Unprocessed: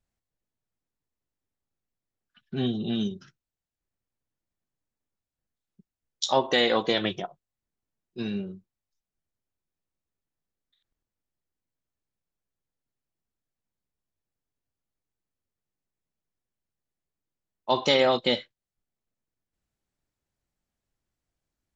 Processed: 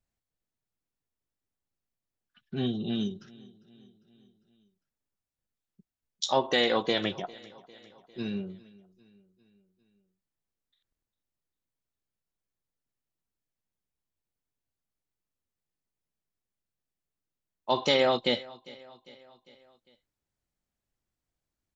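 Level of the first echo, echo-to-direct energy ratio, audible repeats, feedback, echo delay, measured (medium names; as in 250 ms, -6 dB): -22.0 dB, -20.5 dB, 3, 56%, 401 ms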